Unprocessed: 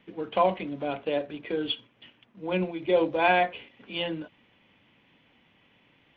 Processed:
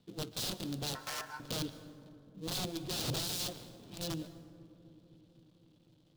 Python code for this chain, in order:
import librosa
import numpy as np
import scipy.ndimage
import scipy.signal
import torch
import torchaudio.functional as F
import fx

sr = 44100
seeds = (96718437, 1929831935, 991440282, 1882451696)

y = fx.dead_time(x, sr, dead_ms=0.24)
y = fx.transient(y, sr, attack_db=-8, sustain_db=8, at=(2.83, 3.93))
y = (np.mod(10.0 ** (25.5 / 20.0) * y + 1.0, 2.0) - 1.0) / 10.0 ** (25.5 / 20.0)
y = fx.graphic_eq(y, sr, hz=(125, 1000, 2000, 4000), db=(10, -4, -12, 9))
y = fx.echo_bbd(y, sr, ms=254, stages=1024, feedback_pct=79, wet_db=-17.5)
y = fx.ring_mod(y, sr, carrier_hz=1200.0, at=(0.95, 1.4))
y = fx.rev_plate(y, sr, seeds[0], rt60_s=2.2, hf_ratio=0.45, predelay_ms=110, drr_db=14.5)
y = F.gain(torch.from_numpy(y), -6.0).numpy()